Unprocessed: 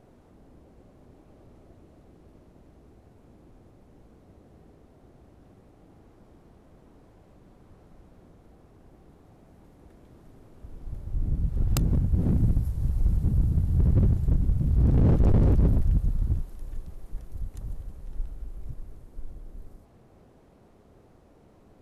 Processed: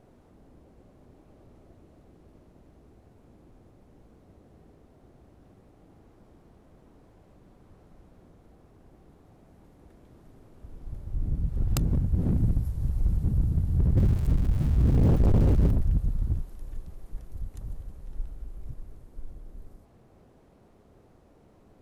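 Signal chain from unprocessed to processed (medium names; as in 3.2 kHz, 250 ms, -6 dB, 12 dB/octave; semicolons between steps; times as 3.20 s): 13.97–15.71 s: jump at every zero crossing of -32.5 dBFS; trim -1.5 dB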